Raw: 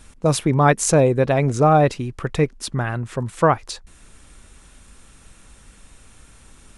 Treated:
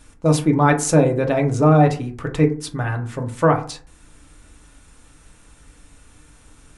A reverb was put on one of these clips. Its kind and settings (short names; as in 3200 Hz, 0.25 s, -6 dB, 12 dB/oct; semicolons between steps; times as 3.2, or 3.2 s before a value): FDN reverb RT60 0.42 s, low-frequency decay 1.2×, high-frequency decay 0.4×, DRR 2 dB; gain -3 dB